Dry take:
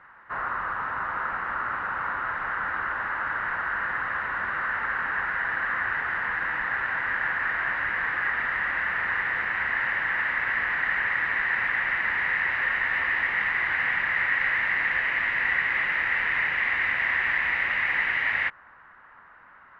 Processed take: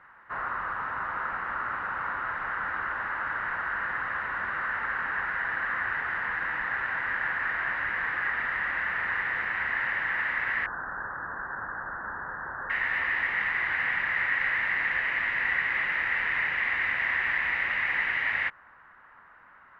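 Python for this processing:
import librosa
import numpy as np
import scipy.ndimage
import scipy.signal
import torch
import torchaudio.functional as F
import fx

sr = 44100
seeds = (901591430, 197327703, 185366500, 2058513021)

y = fx.steep_lowpass(x, sr, hz=1600.0, slope=96, at=(10.66, 12.7))
y = y * librosa.db_to_amplitude(-2.5)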